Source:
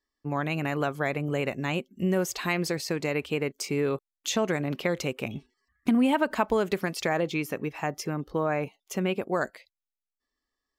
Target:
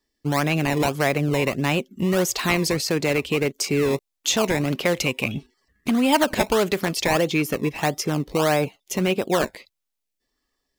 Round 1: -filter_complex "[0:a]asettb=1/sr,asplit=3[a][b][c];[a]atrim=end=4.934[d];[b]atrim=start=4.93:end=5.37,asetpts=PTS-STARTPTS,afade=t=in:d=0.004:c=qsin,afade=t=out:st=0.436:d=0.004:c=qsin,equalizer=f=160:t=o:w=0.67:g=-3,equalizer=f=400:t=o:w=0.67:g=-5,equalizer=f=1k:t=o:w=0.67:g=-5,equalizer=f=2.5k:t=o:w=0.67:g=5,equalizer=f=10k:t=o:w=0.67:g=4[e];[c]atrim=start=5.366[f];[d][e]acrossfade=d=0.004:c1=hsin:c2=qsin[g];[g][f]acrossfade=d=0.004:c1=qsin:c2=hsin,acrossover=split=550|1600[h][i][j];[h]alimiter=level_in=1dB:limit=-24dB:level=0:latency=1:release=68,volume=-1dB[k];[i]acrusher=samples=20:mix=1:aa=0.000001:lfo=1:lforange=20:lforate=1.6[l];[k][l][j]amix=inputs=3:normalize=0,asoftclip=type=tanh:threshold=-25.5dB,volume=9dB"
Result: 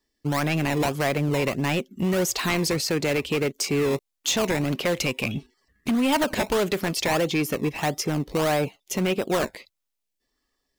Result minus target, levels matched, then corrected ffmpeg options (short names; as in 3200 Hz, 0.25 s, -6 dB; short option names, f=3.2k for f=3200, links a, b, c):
soft clip: distortion +13 dB
-filter_complex "[0:a]asettb=1/sr,asplit=3[a][b][c];[a]atrim=end=4.934[d];[b]atrim=start=4.93:end=5.37,asetpts=PTS-STARTPTS,afade=t=in:d=0.004:c=qsin,afade=t=out:st=0.436:d=0.004:c=qsin,equalizer=f=160:t=o:w=0.67:g=-3,equalizer=f=400:t=o:w=0.67:g=-5,equalizer=f=1k:t=o:w=0.67:g=-5,equalizer=f=2.5k:t=o:w=0.67:g=5,equalizer=f=10k:t=o:w=0.67:g=4[e];[c]atrim=start=5.366[f];[d][e]acrossfade=d=0.004:c1=hsin:c2=qsin[g];[g][f]acrossfade=d=0.004:c1=qsin:c2=hsin,acrossover=split=550|1600[h][i][j];[h]alimiter=level_in=1dB:limit=-24dB:level=0:latency=1:release=68,volume=-1dB[k];[i]acrusher=samples=20:mix=1:aa=0.000001:lfo=1:lforange=20:lforate=1.6[l];[k][l][j]amix=inputs=3:normalize=0,asoftclip=type=tanh:threshold=-15dB,volume=9dB"